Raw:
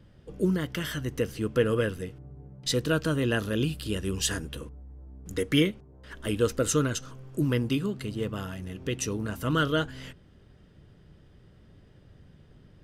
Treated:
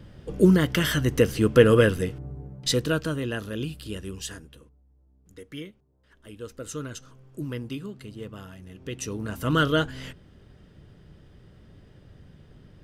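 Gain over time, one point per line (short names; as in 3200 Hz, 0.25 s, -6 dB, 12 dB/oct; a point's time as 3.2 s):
2.3 s +8.5 dB
3.31 s -4 dB
3.98 s -4 dB
4.8 s -15.5 dB
6.3 s -15.5 dB
6.98 s -7 dB
8.65 s -7 dB
9.57 s +3.5 dB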